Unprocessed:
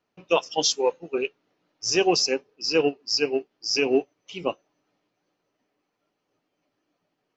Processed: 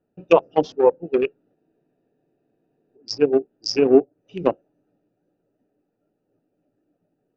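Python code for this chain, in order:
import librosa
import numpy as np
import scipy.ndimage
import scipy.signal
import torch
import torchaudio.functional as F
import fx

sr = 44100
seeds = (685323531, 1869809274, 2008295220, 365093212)

y = fx.wiener(x, sr, points=41)
y = fx.env_lowpass_down(y, sr, base_hz=960.0, full_db=-21.5)
y = fx.spec_freeze(y, sr, seeds[0], at_s=1.58, hold_s=1.38)
y = F.gain(torch.from_numpy(y), 8.5).numpy()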